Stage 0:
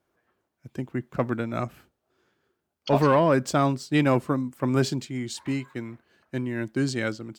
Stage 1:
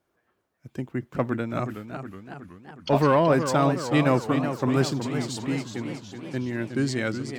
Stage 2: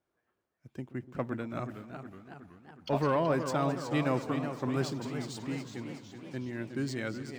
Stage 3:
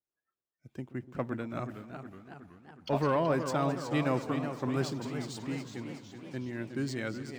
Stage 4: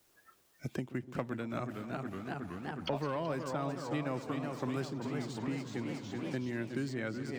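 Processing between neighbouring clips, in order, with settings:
warbling echo 0.372 s, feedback 60%, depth 163 cents, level -8.5 dB
median filter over 3 samples; split-band echo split 900 Hz, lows 0.126 s, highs 0.215 s, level -16 dB; gain -8.5 dB
spectral noise reduction 18 dB
three-band squash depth 100%; gain -4.5 dB

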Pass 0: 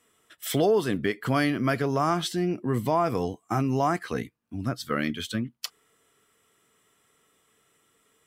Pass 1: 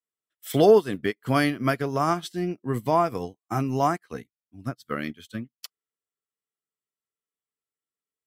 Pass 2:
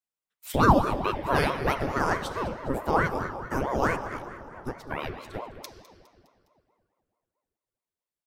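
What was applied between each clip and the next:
high shelf 11000 Hz +7 dB; upward expander 2.5:1, over -46 dBFS; gain +7.5 dB
feedback echo 0.205 s, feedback 51%, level -17 dB; reverb RT60 2.6 s, pre-delay 3 ms, DRR 7.5 dB; ring modulator with a swept carrier 480 Hz, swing 75%, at 4.6 Hz

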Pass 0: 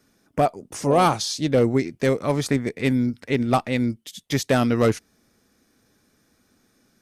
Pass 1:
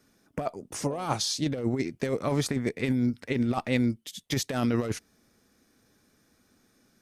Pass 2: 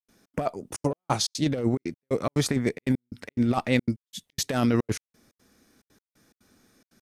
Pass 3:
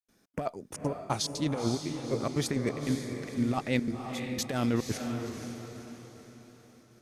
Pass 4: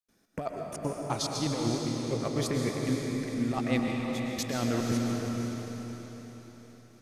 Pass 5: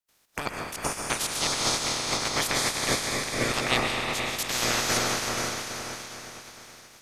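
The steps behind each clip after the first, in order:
negative-ratio compressor -21 dBFS, ratio -0.5; gain -4.5 dB
step gate ".xx.xxxxx.x." 178 bpm -60 dB; gain +3.5 dB
diffused feedback echo 0.502 s, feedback 45%, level -6 dB; gain -5.5 dB
digital reverb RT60 2.4 s, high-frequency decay 0.95×, pre-delay 85 ms, DRR 1.5 dB; gain -1.5 dB
spectral limiter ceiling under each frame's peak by 28 dB; gain +3 dB

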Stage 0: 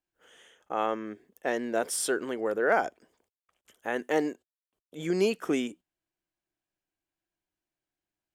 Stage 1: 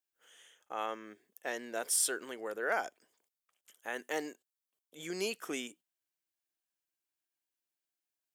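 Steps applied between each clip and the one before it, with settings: tilt +3 dB/oct; gain -7.5 dB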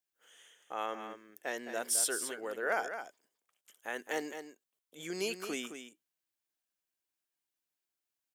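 echo 0.214 s -9 dB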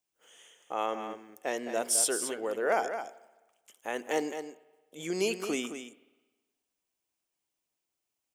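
fifteen-band EQ 1600 Hz -8 dB, 4000 Hz -5 dB, 16000 Hz -11 dB; spring tank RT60 1.2 s, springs 49/53 ms, chirp 55 ms, DRR 17.5 dB; gain +7 dB

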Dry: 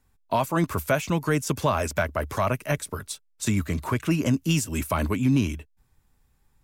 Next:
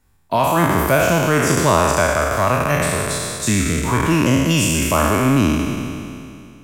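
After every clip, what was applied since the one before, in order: spectral trails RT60 2.48 s; gain +4 dB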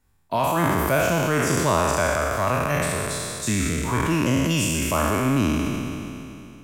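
sustainer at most 21 dB/s; gain -6 dB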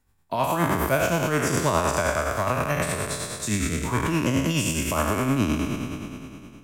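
tremolo 9.6 Hz, depth 45%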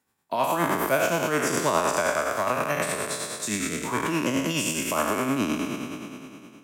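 HPF 230 Hz 12 dB/oct

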